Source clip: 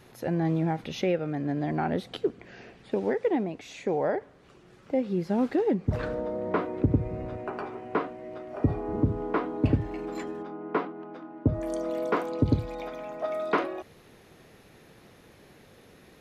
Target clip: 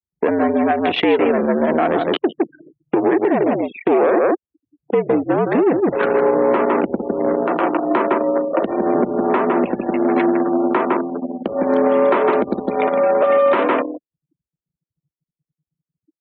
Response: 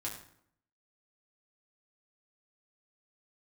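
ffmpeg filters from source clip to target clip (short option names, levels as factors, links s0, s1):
-filter_complex "[0:a]aecho=1:1:158:0.447,anlmdn=2.51,asplit=2[s0][s1];[s1]volume=33.5,asoftclip=hard,volume=0.0299,volume=0.422[s2];[s0][s2]amix=inputs=2:normalize=0,acompressor=threshold=0.0355:ratio=12,aeval=exprs='0.106*(cos(1*acos(clip(val(0)/0.106,-1,1)))-cos(1*PI/2))+0.0299*(cos(2*acos(clip(val(0)/0.106,-1,1)))-cos(2*PI/2))+0.000596*(cos(3*acos(clip(val(0)/0.106,-1,1)))-cos(3*PI/2))+0.00473*(cos(4*acos(clip(val(0)/0.106,-1,1)))-cos(4*PI/2))+0.0075*(cos(6*acos(clip(val(0)/0.106,-1,1)))-cos(6*PI/2))':c=same,afftfilt=real='re*gte(hypot(re,im),0.00251)':imag='im*gte(hypot(re,im),0.00251)':win_size=1024:overlap=0.75,highpass=f=360:t=q:w=0.5412,highpass=f=360:t=q:w=1.307,lowpass=f=3400:t=q:w=0.5176,lowpass=f=3400:t=q:w=0.7071,lowpass=f=3400:t=q:w=1.932,afreqshift=-68,alimiter=level_in=22.4:limit=0.891:release=50:level=0:latency=1,volume=0.501"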